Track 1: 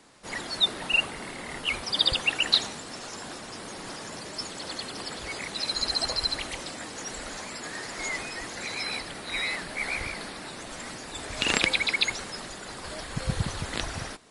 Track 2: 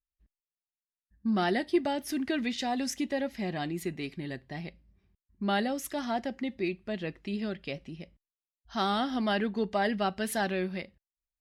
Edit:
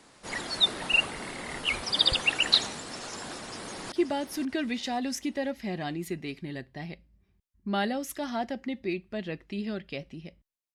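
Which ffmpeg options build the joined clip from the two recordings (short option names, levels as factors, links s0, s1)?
-filter_complex "[0:a]apad=whole_dur=10.74,atrim=end=10.74,atrim=end=3.922[s0];[1:a]atrim=start=1.668:end=8.49[s1];[s0][s1]acrossfade=d=0.004:c1=hsin:c2=hsin,asplit=2[s2][s3];[s3]afade=t=in:st=3.42:d=0.01,afade=t=out:st=3.92:d=0.01,aecho=0:1:530|1060|1590|2120|2650:0.316228|0.142302|0.0640361|0.0288163|0.0129673[s4];[s2][s4]amix=inputs=2:normalize=0"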